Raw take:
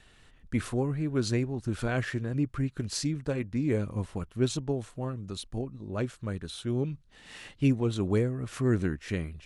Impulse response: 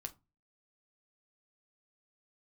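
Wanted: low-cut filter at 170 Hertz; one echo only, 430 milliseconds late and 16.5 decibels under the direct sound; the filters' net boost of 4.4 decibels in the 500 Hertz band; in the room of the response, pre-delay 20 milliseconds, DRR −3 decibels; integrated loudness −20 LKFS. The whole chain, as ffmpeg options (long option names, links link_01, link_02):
-filter_complex "[0:a]highpass=170,equalizer=frequency=500:width_type=o:gain=6,aecho=1:1:430:0.15,asplit=2[link_01][link_02];[1:a]atrim=start_sample=2205,adelay=20[link_03];[link_02][link_03]afir=irnorm=-1:irlink=0,volume=6.5dB[link_04];[link_01][link_04]amix=inputs=2:normalize=0,volume=5.5dB"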